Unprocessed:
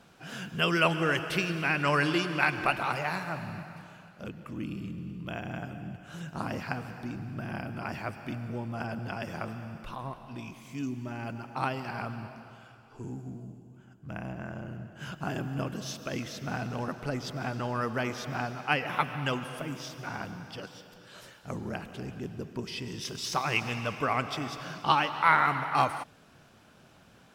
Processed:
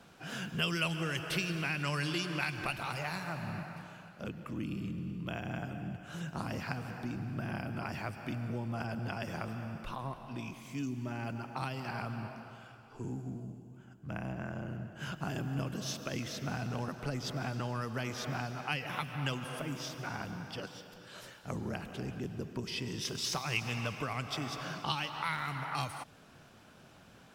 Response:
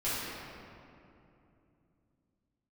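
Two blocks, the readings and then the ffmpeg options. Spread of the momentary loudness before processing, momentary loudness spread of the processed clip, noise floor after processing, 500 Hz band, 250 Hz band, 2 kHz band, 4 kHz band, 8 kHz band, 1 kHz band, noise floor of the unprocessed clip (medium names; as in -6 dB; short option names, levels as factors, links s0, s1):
17 LU, 12 LU, -57 dBFS, -6.5 dB, -3.5 dB, -7.0 dB, -2.5 dB, 0.0 dB, -9.5 dB, -57 dBFS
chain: -filter_complex "[0:a]acrossover=split=160|3000[s0][s1][s2];[s1]acompressor=threshold=0.0158:ratio=6[s3];[s0][s3][s2]amix=inputs=3:normalize=0"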